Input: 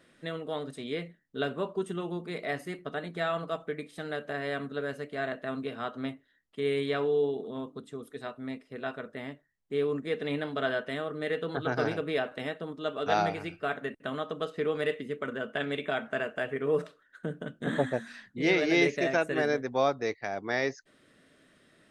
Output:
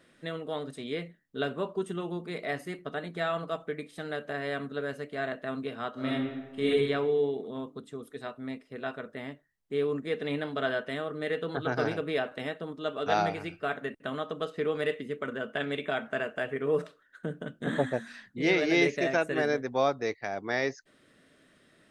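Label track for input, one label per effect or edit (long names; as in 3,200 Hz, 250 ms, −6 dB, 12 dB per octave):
5.930000	6.680000	thrown reverb, RT60 1.2 s, DRR −7.5 dB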